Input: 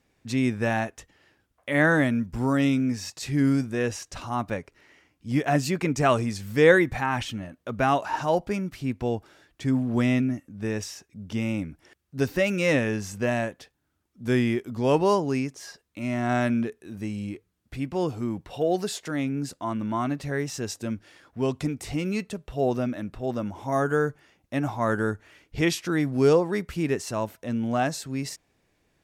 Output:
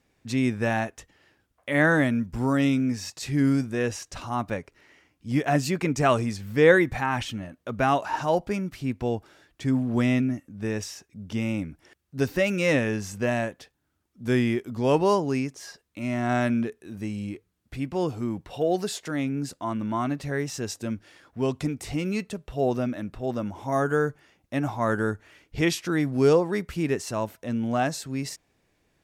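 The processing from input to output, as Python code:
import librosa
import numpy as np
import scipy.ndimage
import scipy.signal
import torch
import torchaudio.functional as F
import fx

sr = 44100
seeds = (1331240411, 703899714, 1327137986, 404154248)

y = fx.peak_eq(x, sr, hz=8800.0, db=fx.line((6.35, -10.5), (6.79, -1.5)), octaves=2.0, at=(6.35, 6.79), fade=0.02)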